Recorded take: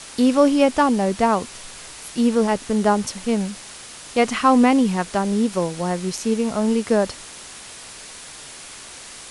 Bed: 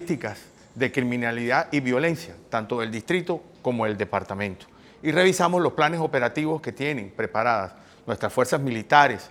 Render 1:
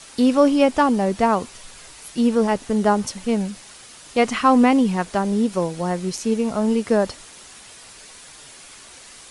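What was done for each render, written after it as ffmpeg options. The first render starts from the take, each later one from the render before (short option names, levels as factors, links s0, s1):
-af "afftdn=nr=6:nf=-39"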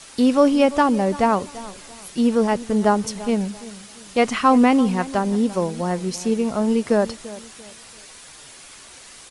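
-filter_complex "[0:a]asplit=2[s0][s1];[s1]adelay=341,lowpass=f=2000:p=1,volume=0.141,asplit=2[s2][s3];[s3]adelay=341,lowpass=f=2000:p=1,volume=0.34,asplit=2[s4][s5];[s5]adelay=341,lowpass=f=2000:p=1,volume=0.34[s6];[s0][s2][s4][s6]amix=inputs=4:normalize=0"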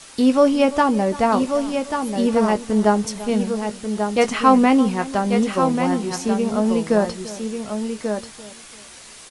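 -filter_complex "[0:a]asplit=2[s0][s1];[s1]adelay=19,volume=0.282[s2];[s0][s2]amix=inputs=2:normalize=0,aecho=1:1:1139:0.473"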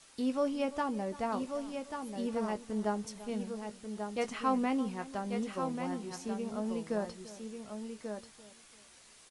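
-af "volume=0.15"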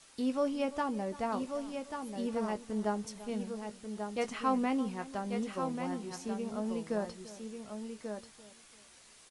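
-af anull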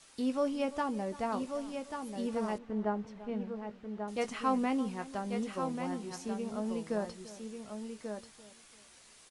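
-filter_complex "[0:a]asettb=1/sr,asplit=3[s0][s1][s2];[s0]atrim=end=2.584[s3];[s1]atrim=start=2.58:end=4.08,asetpts=PTS-STARTPTS,afade=t=in:d=0.004:c=qsin,afade=t=out:st=1.496:d=0.004:c=qsin,lowpass=2200[s4];[s2]atrim=start=4.076[s5];[s3][s4]acrossfade=d=0.004:c1=hsin:c2=qsin[s6];[s6][s5]acrossfade=d=0.004:c1=qsin:c2=hsin"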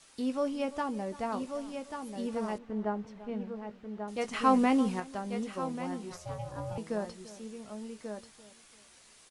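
-filter_complex "[0:a]asettb=1/sr,asplit=3[s0][s1][s2];[s0]atrim=end=4.334[s3];[s1]atrim=start=4.33:end=5,asetpts=PTS-STARTPTS,afade=t=in:d=0.004:c=qsin,afade=t=out:st=0.666:d=0.004:c=qsin,acontrast=50[s4];[s2]atrim=start=4.996[s5];[s3][s4]acrossfade=d=0.004:c1=hsin:c2=qsin[s6];[s6][s5]acrossfade=d=0.004:c1=qsin:c2=hsin,asettb=1/sr,asplit=3[s7][s8][s9];[s7]atrim=end=6.124[s10];[s8]atrim=start=6.12:end=6.78,asetpts=PTS-STARTPTS,afade=t=in:d=0.004:c=qsin,afade=t=out:st=0.656:d=0.004:c=qsin,aeval=exprs='val(0)*sin(2*PI*350*n/s)':c=same[s11];[s9]atrim=start=6.776[s12];[s10][s11]acrossfade=d=0.004:c1=hsin:c2=qsin[s13];[s13][s12]acrossfade=d=0.004:c1=qsin:c2=hsin"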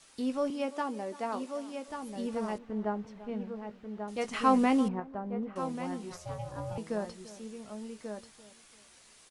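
-filter_complex "[0:a]asettb=1/sr,asplit=3[s0][s1][s2];[s0]atrim=end=0.504[s3];[s1]atrim=start=0.5:end=1.88,asetpts=PTS-STARTPTS,afade=t=in:d=0.004:c=qsin,afade=t=out:st=1.376:d=0.004:c=qsin,highpass=f=230:w=0.5412,highpass=f=230:w=1.3066[s4];[s2]atrim=start=1.876[s5];[s3][s4]acrossfade=d=0.004:c1=hsin:c2=qsin[s6];[s6][s5]acrossfade=d=0.004:c1=qsin:c2=hsin,asettb=1/sr,asplit=3[s7][s8][s9];[s7]atrim=end=4.884[s10];[s8]atrim=start=4.88:end=5.56,asetpts=PTS-STARTPTS,afade=t=in:d=0.004:c=qsin,afade=t=out:st=0.676:d=0.004:c=qsin,lowpass=1200[s11];[s9]atrim=start=5.556[s12];[s10][s11]acrossfade=d=0.004:c1=hsin:c2=qsin[s13];[s13][s12]acrossfade=d=0.004:c1=qsin:c2=hsin"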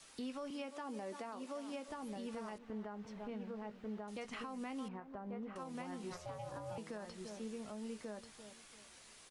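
-filter_complex "[0:a]acrossover=split=150|1000|4400[s0][s1][s2][s3];[s0]acompressor=threshold=0.00141:ratio=4[s4];[s1]acompressor=threshold=0.01:ratio=4[s5];[s2]acompressor=threshold=0.00794:ratio=4[s6];[s3]acompressor=threshold=0.001:ratio=4[s7];[s4][s5][s6][s7]amix=inputs=4:normalize=0,alimiter=level_in=3.98:limit=0.0631:level=0:latency=1:release=184,volume=0.251"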